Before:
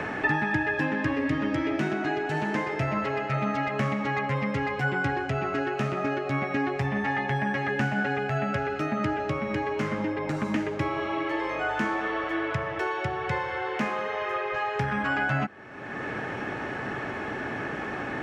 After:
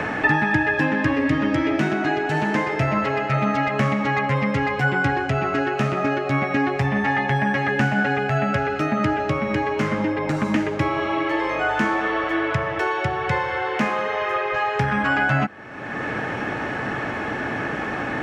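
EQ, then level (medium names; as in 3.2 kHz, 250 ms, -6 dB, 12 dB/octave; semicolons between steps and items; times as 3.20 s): band-stop 390 Hz, Q 12; +6.5 dB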